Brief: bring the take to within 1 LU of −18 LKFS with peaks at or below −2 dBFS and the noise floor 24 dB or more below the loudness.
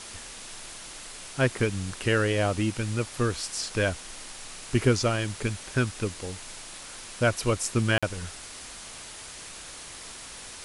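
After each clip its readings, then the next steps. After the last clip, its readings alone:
number of dropouts 1; longest dropout 46 ms; background noise floor −43 dBFS; target noise floor −52 dBFS; integrated loudness −27.5 LKFS; sample peak −9.5 dBFS; target loudness −18.0 LKFS
→ repair the gap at 0:07.98, 46 ms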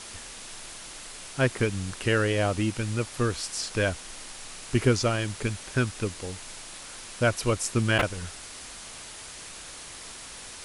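number of dropouts 0; background noise floor −43 dBFS; target noise floor −52 dBFS
→ broadband denoise 9 dB, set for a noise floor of −43 dBFS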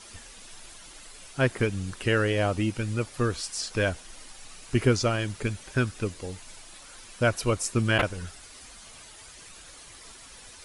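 background noise floor −48 dBFS; target noise floor −52 dBFS
→ broadband denoise 6 dB, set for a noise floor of −48 dBFS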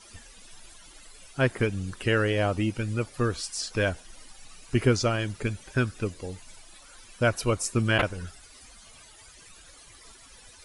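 background noise floor −52 dBFS; integrated loudness −27.5 LKFS; sample peak −10.0 dBFS; target loudness −18.0 LKFS
→ level +9.5 dB
brickwall limiter −2 dBFS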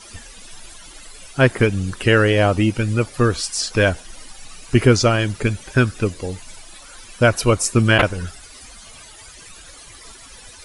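integrated loudness −18.0 LKFS; sample peak −2.0 dBFS; background noise floor −42 dBFS

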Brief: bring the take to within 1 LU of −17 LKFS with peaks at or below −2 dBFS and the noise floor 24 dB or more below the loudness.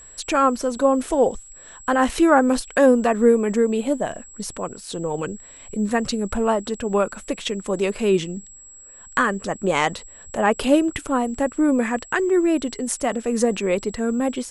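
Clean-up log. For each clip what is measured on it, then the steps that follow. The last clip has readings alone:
interfering tone 7,700 Hz; level of the tone −42 dBFS; integrated loudness −21.5 LKFS; sample peak −4.0 dBFS; target loudness −17.0 LKFS
→ notch filter 7,700 Hz, Q 30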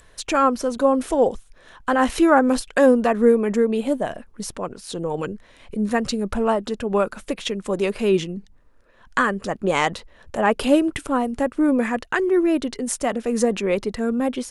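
interfering tone none found; integrated loudness −21.5 LKFS; sample peak −4.0 dBFS; target loudness −17.0 LKFS
→ level +4.5 dB
brickwall limiter −2 dBFS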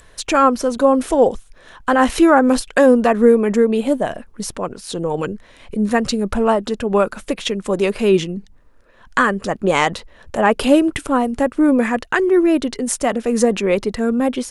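integrated loudness −17.0 LKFS; sample peak −2.0 dBFS; background noise floor −48 dBFS

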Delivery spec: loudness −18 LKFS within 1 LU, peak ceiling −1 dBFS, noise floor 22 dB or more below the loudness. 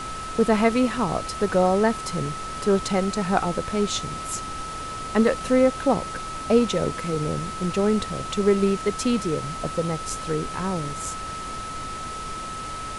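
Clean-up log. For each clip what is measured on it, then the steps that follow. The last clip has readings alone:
interfering tone 1,300 Hz; level of the tone −32 dBFS; background noise floor −33 dBFS; target noise floor −47 dBFS; integrated loudness −24.5 LKFS; sample peak −4.5 dBFS; target loudness −18.0 LKFS
→ notch filter 1,300 Hz, Q 30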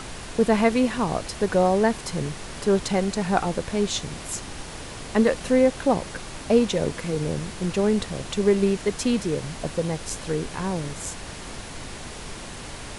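interfering tone none found; background noise floor −38 dBFS; target noise floor −47 dBFS
→ noise reduction from a noise print 9 dB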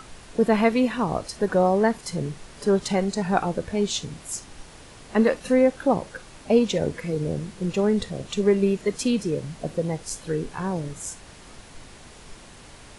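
background noise floor −46 dBFS; target noise floor −47 dBFS
→ noise reduction from a noise print 6 dB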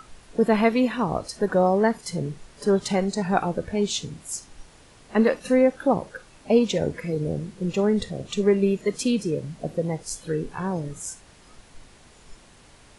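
background noise floor −52 dBFS; integrated loudness −24.5 LKFS; sample peak −5.5 dBFS; target loudness −18.0 LKFS
→ level +6.5 dB
brickwall limiter −1 dBFS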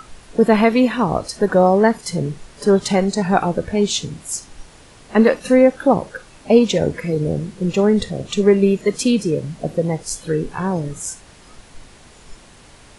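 integrated loudness −18.0 LKFS; sample peak −1.0 dBFS; background noise floor −46 dBFS

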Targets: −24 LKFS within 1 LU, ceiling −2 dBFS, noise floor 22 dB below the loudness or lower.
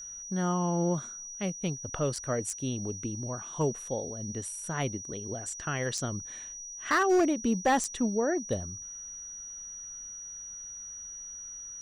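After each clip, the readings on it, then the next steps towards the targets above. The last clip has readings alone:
share of clipped samples 0.3%; peaks flattened at −19.0 dBFS; interfering tone 5,800 Hz; level of the tone −40 dBFS; integrated loudness −32.0 LKFS; sample peak −19.0 dBFS; target loudness −24.0 LKFS
→ clipped peaks rebuilt −19 dBFS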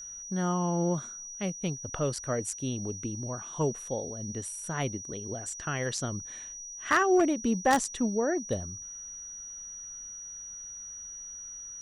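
share of clipped samples 0.0%; interfering tone 5,800 Hz; level of the tone −40 dBFS
→ notch filter 5,800 Hz, Q 30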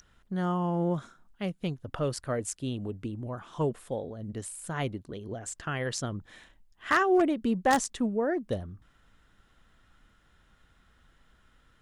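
interfering tone none found; integrated loudness −31.0 LKFS; sample peak −10.0 dBFS; target loudness −24.0 LKFS
→ level +7 dB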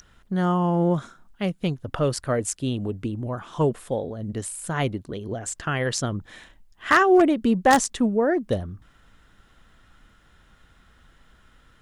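integrated loudness −24.0 LKFS; sample peak −3.0 dBFS; background noise floor −58 dBFS

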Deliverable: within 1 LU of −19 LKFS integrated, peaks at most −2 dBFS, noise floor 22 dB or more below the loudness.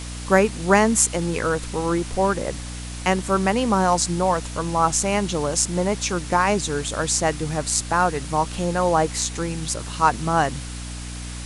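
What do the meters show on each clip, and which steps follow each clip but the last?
mains hum 60 Hz; hum harmonics up to 300 Hz; level of the hum −31 dBFS; background noise floor −33 dBFS; target noise floor −44 dBFS; integrated loudness −21.5 LKFS; sample peak −1.0 dBFS; target loudness −19.0 LKFS
→ mains-hum notches 60/120/180/240/300 Hz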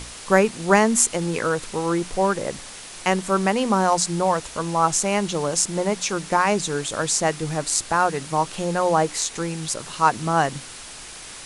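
mains hum none found; background noise floor −39 dBFS; target noise floor −44 dBFS
→ broadband denoise 6 dB, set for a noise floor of −39 dBFS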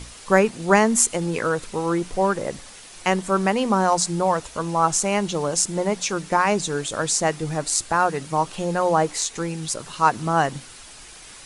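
background noise floor −43 dBFS; target noise floor −44 dBFS
→ broadband denoise 6 dB, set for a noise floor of −43 dBFS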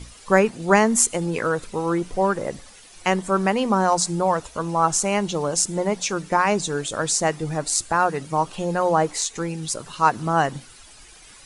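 background noise floor −47 dBFS; integrated loudness −22.0 LKFS; sample peak −1.5 dBFS; target loudness −19.0 LKFS
→ level +3 dB
brickwall limiter −2 dBFS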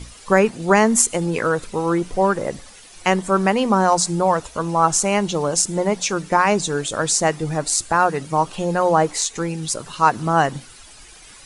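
integrated loudness −19.0 LKFS; sample peak −2.0 dBFS; background noise floor −44 dBFS

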